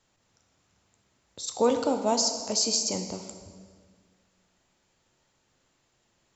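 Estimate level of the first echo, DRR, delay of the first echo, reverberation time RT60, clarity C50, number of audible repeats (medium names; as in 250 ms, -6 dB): no echo, 5.5 dB, no echo, 1.8 s, 7.5 dB, no echo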